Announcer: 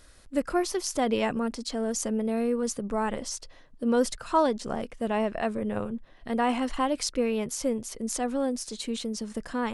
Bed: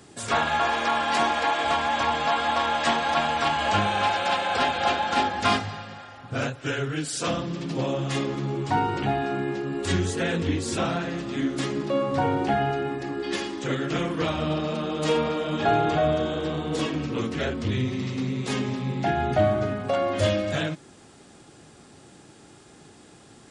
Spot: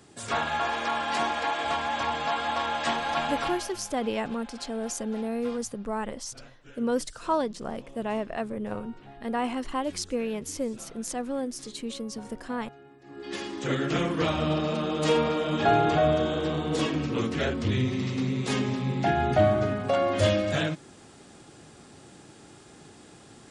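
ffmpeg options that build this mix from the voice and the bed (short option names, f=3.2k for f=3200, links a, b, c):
-filter_complex "[0:a]adelay=2950,volume=-3dB[a];[1:a]volume=19dB,afade=t=out:st=3.35:d=0.38:silence=0.112202,afade=t=in:st=13.02:d=0.75:silence=0.0668344[b];[a][b]amix=inputs=2:normalize=0"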